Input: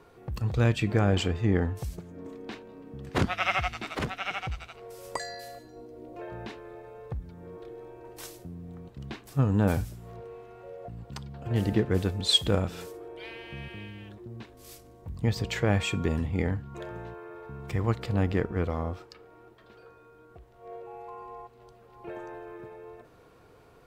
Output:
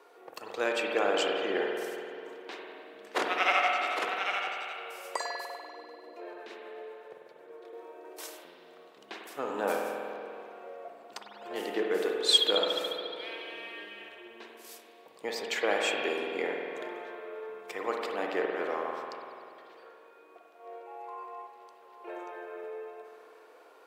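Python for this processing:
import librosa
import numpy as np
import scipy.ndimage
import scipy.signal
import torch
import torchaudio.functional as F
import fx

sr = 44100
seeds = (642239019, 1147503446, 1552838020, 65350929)

y = fx.rotary(x, sr, hz=8.0, at=(5.45, 7.73))
y = scipy.signal.sosfilt(scipy.signal.butter(4, 400.0, 'highpass', fs=sr, output='sos'), y)
y = fx.rev_spring(y, sr, rt60_s=2.5, pass_ms=(48,), chirp_ms=50, drr_db=0.0)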